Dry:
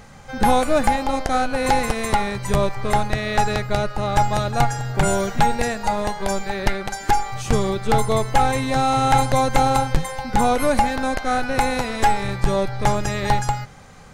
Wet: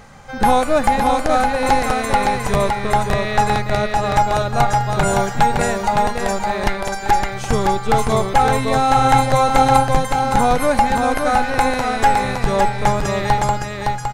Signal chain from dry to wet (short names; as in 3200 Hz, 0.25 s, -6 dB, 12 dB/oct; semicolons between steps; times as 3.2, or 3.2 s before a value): bell 1000 Hz +3.5 dB 2.1 oct; on a send: echo 0.563 s -4 dB